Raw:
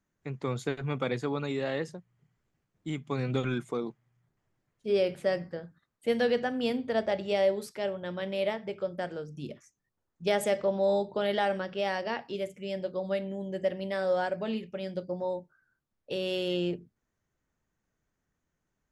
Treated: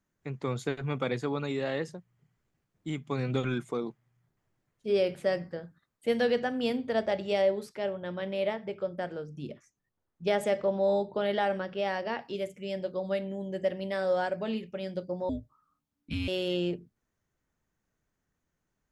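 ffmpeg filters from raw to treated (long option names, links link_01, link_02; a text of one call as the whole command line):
ffmpeg -i in.wav -filter_complex "[0:a]asettb=1/sr,asplit=3[link_01][link_02][link_03];[link_01]atrim=end=7.424[link_04];[link_02]atrim=start=7.42:end=12.19,asetpts=PTS-STARTPTS,afade=type=in:duration=0.004:curve=qsin,afade=type=out:start_time=4.766:duration=0.004:curve=qsin,highshelf=frequency=4700:gain=-8[link_05];[link_03]atrim=start=12.186[link_06];[link_04][link_05]acrossfade=duration=0.004:curve1=hsin:curve2=qsin[link_07];[link_07][link_06]acrossfade=duration=0.004:curve1=qsin:curve2=hsin,asettb=1/sr,asplit=3[link_08][link_09][link_10];[link_08]atrim=end=15.294[link_11];[link_09]atrim=start=15.29:end=16.28,asetpts=PTS-STARTPTS,afade=type=in:duration=0.004:curve=qsin,afade=type=out:start_time=0.986:duration=0.004:curve=qsin,afreqshift=-290[link_12];[link_10]atrim=start=16.276[link_13];[link_11][link_12]acrossfade=duration=0.004:curve1=hsin:curve2=qsin[link_14];[link_14][link_13]acrossfade=duration=0.004:curve1=qsin:curve2=hsin" out.wav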